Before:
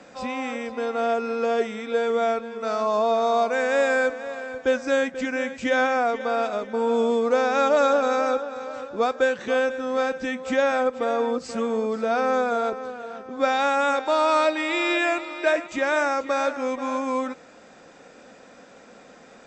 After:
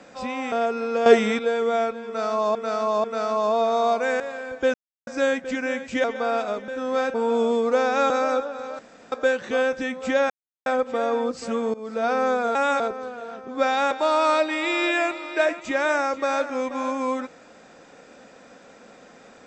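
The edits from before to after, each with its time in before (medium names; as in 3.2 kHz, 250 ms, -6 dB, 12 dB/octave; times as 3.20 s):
0.52–1.00 s: delete
1.54–1.87 s: gain +10 dB
2.54–3.03 s: loop, 3 plays
3.70–4.23 s: delete
4.77 s: insert silence 0.33 s
5.74–6.09 s: delete
7.69–8.07 s: delete
8.76–9.09 s: room tone
9.70–10.16 s: move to 6.73 s
10.73 s: insert silence 0.36 s
11.81–12.12 s: fade in, from -19 dB
13.73–13.98 s: move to 12.62 s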